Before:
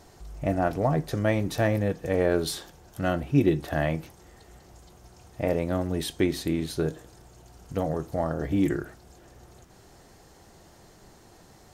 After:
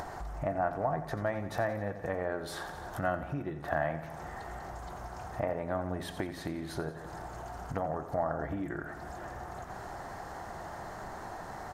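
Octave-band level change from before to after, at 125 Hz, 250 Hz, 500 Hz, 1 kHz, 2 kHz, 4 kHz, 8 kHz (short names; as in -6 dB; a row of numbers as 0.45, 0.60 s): -10.0, -11.5, -6.5, -0.5, -3.5, -10.5, -10.0 dB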